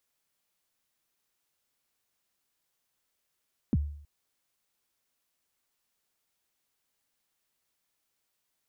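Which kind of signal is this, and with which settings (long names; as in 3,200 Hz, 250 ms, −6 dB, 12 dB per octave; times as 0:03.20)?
synth kick length 0.32 s, from 300 Hz, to 73 Hz, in 36 ms, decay 0.61 s, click off, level −19.5 dB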